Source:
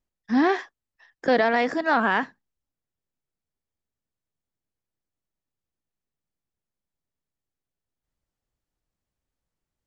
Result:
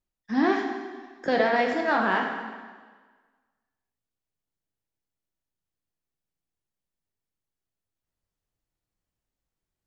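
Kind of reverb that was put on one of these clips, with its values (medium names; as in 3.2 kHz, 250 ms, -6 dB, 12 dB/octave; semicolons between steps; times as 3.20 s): plate-style reverb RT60 1.5 s, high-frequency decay 0.95×, DRR 1.5 dB; trim -4 dB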